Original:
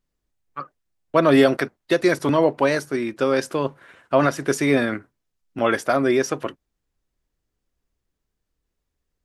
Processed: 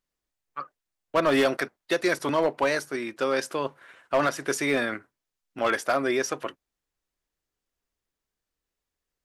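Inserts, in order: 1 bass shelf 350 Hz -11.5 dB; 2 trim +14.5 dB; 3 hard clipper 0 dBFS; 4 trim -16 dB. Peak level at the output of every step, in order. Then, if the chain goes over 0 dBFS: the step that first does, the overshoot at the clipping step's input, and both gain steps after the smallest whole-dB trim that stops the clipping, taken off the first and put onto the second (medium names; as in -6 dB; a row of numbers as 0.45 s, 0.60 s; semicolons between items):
-7.5 dBFS, +7.0 dBFS, 0.0 dBFS, -16.0 dBFS; step 2, 7.0 dB; step 2 +7.5 dB, step 4 -9 dB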